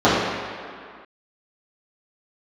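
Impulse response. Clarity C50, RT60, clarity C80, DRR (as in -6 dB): -1.0 dB, 2.1 s, 1.0 dB, -12.5 dB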